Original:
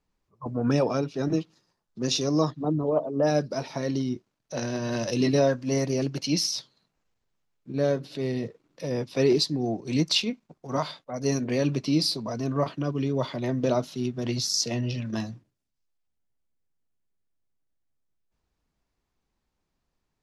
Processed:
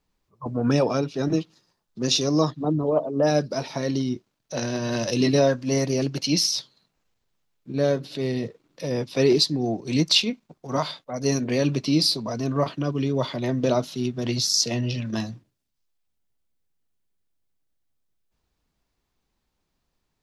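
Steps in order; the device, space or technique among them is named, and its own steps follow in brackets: presence and air boost (peaking EQ 3.7 kHz +3 dB 0.97 oct; treble shelf 11 kHz +5 dB); trim +2.5 dB

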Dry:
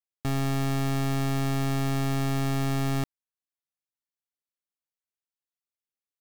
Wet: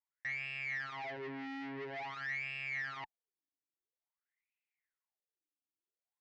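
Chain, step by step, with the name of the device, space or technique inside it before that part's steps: wah-wah guitar rig (wah-wah 0.49 Hz 270–2600 Hz, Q 9.5; valve stage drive 57 dB, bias 0.55; cabinet simulation 110–4400 Hz, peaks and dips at 170 Hz -7 dB, 240 Hz -6 dB, 570 Hz -8 dB, 1.2 kHz -7 dB, 2 kHz +9 dB, 3.7 kHz -5 dB); trim +17 dB

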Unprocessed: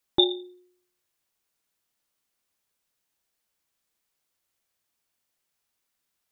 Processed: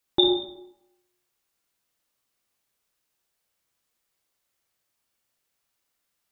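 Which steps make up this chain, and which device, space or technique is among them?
bathroom (reverberation RT60 0.75 s, pre-delay 43 ms, DRR 1.5 dB)

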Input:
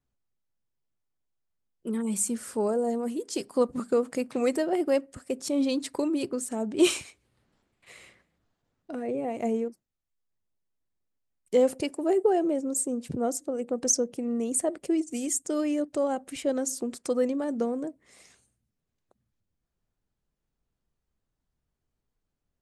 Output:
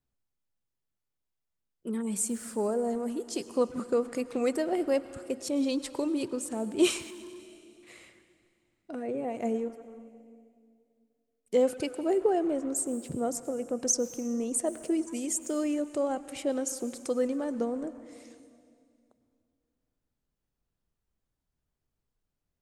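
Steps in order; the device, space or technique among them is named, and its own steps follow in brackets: saturated reverb return (on a send at -12 dB: reverberation RT60 2.2 s, pre-delay 93 ms + saturation -26 dBFS, distortion -11 dB); on the sum: trim -2.5 dB

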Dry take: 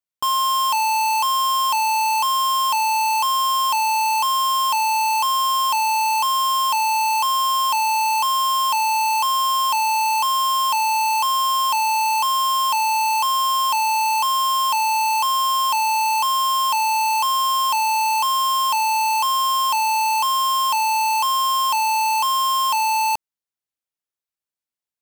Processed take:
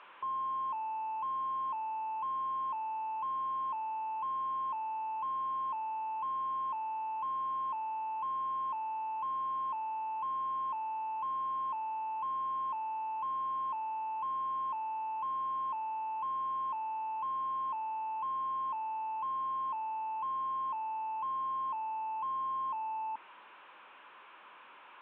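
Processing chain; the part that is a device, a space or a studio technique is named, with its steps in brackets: digital answering machine (band-pass 340–3200 Hz; one-bit delta coder 16 kbps, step -42 dBFS; cabinet simulation 430–3900 Hz, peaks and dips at 450 Hz -5 dB, 690 Hz -8 dB, 1 kHz +8 dB, 2 kHz -8 dB, 3.1 kHz -3 dB); trim -5 dB

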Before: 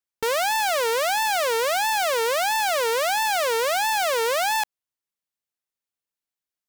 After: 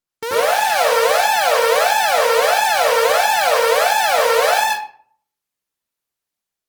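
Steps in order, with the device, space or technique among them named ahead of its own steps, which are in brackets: far-field microphone of a smart speaker (reverberation RT60 0.50 s, pre-delay 81 ms, DRR -7 dB; high-pass 99 Hz 12 dB/octave; level rider gain up to 3.5 dB; trim -1 dB; Opus 20 kbps 48 kHz)

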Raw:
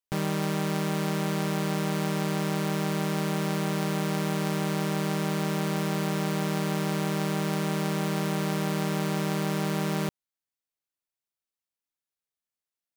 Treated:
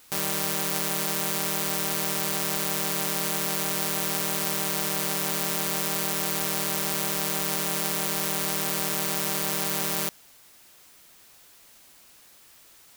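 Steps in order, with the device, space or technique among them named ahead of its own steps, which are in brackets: turntable without a phono preamp (RIAA curve recording; white noise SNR 25 dB)

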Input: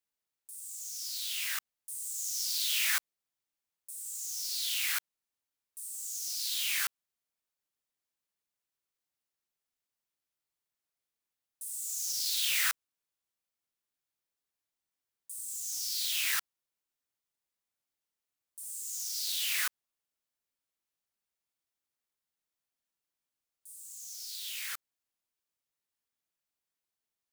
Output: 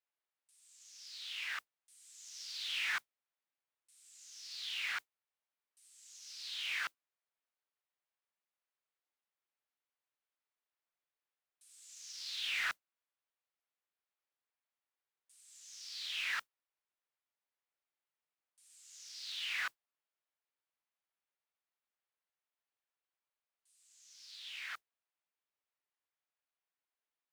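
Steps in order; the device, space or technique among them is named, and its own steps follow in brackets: carbon microphone (band-pass 500–2800 Hz; saturation -27.5 dBFS, distortion -20 dB; modulation noise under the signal 24 dB)

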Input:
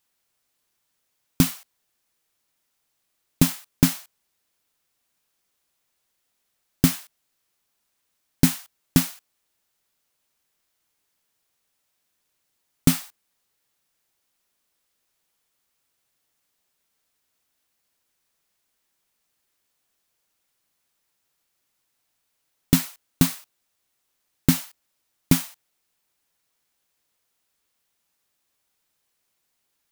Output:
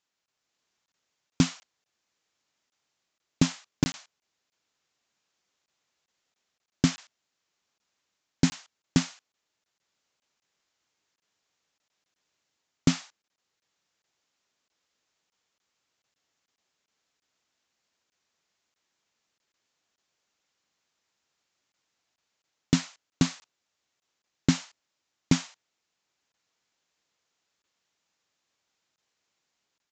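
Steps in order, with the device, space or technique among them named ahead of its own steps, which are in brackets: call with lost packets (high-pass 110 Hz 6 dB/octave; resampled via 16 kHz; level rider gain up to 4.5 dB; lost packets); trim -5 dB

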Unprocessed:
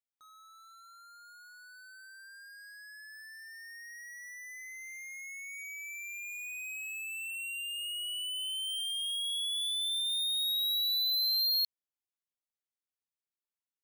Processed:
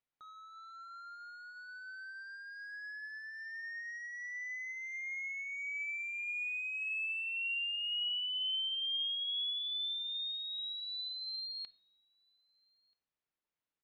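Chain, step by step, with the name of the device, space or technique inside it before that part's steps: shout across a valley (distance through air 240 m; echo from a far wall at 220 m, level -29 dB); low-pass that closes with the level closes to 2.3 kHz, closed at -36 dBFS; simulated room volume 2200 m³, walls furnished, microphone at 0.49 m; trim +6.5 dB

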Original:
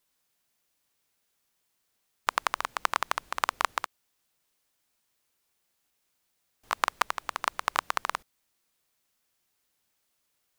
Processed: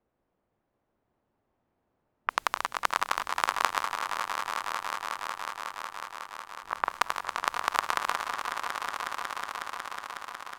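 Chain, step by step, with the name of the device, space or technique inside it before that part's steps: backward echo that repeats 280 ms, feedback 67%, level -14 dB; 3.84–6.91 s: low-pass 1.5 kHz; cassette deck with a dynamic noise filter (white noise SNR 29 dB; level-controlled noise filter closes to 680 Hz, open at -31 dBFS); echo with a slow build-up 183 ms, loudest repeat 5, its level -10.5 dB

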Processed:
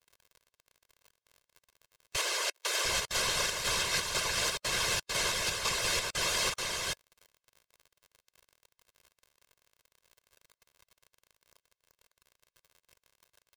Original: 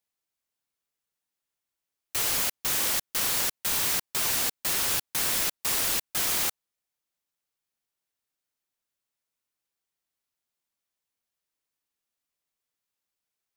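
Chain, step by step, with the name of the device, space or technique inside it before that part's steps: chunks repeated in reverse 436 ms, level -2.5 dB; lo-fi chain (low-pass 6.2 kHz 12 dB/octave; wow and flutter; crackle 55 per s -45 dBFS); 2.16–2.85 s: steep high-pass 320 Hz 96 dB/octave; comb 1.9 ms, depth 92%; harmonic-percussive split harmonic -11 dB; trim +1 dB

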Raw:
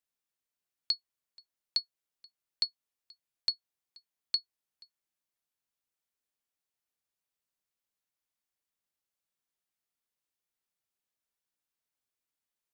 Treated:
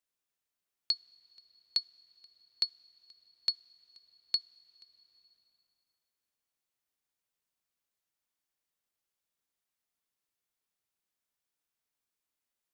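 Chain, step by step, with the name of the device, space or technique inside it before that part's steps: compressed reverb return (on a send at -5.5 dB: reverberation RT60 2.4 s, pre-delay 23 ms + compression 4:1, threshold -58 dBFS, peak gain reduction 18.5 dB)

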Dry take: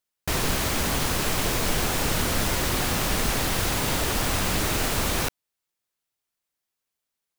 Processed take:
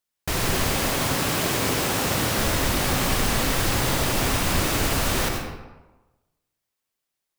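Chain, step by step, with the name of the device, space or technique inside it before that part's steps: 0.77–2.39 s: high-pass 92 Hz; bathroom (reverberation RT60 1.2 s, pre-delay 78 ms, DRR 1.5 dB)

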